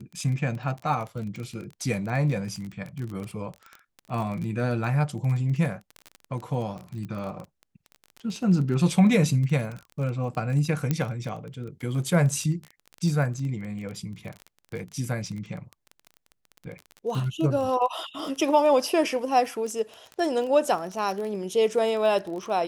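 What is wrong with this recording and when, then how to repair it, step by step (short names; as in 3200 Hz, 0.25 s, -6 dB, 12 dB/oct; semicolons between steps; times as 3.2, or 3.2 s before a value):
crackle 22/s -31 dBFS
10.91 pop -11 dBFS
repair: de-click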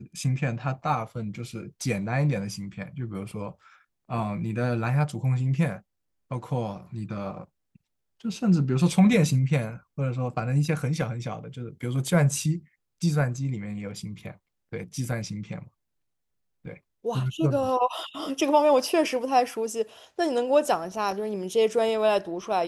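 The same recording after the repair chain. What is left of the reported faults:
none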